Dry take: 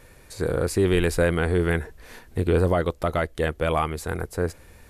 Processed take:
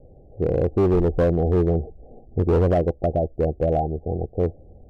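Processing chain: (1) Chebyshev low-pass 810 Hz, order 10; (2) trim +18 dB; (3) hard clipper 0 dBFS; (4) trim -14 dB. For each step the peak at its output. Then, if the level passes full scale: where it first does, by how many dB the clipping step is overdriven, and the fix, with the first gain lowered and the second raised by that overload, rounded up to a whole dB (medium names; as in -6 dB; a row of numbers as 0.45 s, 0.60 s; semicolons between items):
-12.5 dBFS, +5.5 dBFS, 0.0 dBFS, -14.0 dBFS; step 2, 5.5 dB; step 2 +12 dB, step 4 -8 dB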